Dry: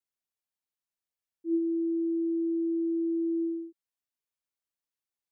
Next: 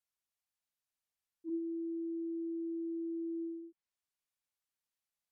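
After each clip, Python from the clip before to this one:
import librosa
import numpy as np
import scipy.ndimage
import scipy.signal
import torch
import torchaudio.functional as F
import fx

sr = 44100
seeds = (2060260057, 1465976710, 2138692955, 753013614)

y = fx.env_lowpass_down(x, sr, base_hz=340.0, full_db=-31.0)
y = fx.peak_eq(y, sr, hz=340.0, db=-7.0, octaves=1.2)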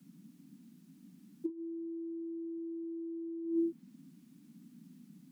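y = fx.dmg_noise_band(x, sr, seeds[0], low_hz=160.0, high_hz=280.0, level_db=-74.0)
y = fx.over_compress(y, sr, threshold_db=-45.0, ratio=-0.5)
y = y * librosa.db_to_amplitude(9.0)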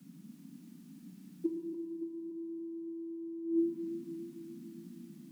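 y = fx.echo_feedback(x, sr, ms=285, feedback_pct=59, wet_db=-9)
y = fx.rev_schroeder(y, sr, rt60_s=1.8, comb_ms=26, drr_db=4.5)
y = y * librosa.db_to_amplitude(3.5)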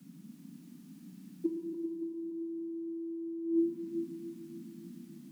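y = x + 10.0 ** (-10.0 / 20.0) * np.pad(x, (int(395 * sr / 1000.0), 0))[:len(x)]
y = y * librosa.db_to_amplitude(1.0)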